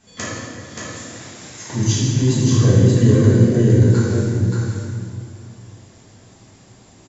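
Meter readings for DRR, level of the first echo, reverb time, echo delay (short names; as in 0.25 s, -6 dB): -11.0 dB, -4.0 dB, 2.3 s, 0.578 s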